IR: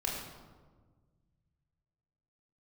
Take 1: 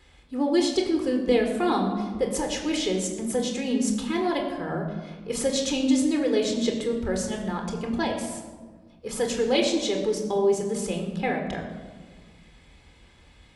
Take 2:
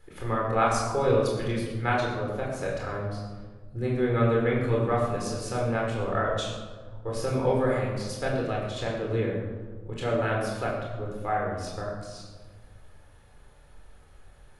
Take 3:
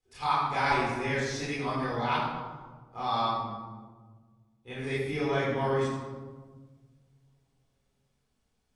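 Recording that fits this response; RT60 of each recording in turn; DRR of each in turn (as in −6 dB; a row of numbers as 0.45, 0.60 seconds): 2; 1.5, 1.5, 1.5 seconds; 2.5, −3.5, −10.5 decibels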